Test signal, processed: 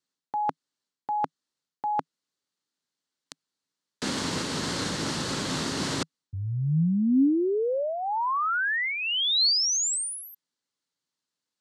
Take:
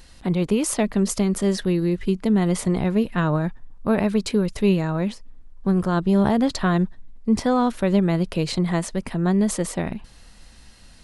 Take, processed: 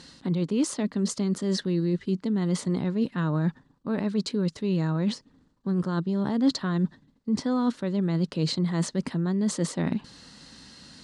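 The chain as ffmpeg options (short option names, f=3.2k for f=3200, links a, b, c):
-af "areverse,acompressor=threshold=-27dB:ratio=12,areverse,highpass=130,equalizer=f=160:t=q:w=4:g=5,equalizer=f=270:t=q:w=4:g=7,equalizer=f=700:t=q:w=4:g=-6,equalizer=f=2.4k:t=q:w=4:g=-6,equalizer=f=4.3k:t=q:w=4:g=5,lowpass=f=8.2k:w=0.5412,lowpass=f=8.2k:w=1.3066,volume=3dB"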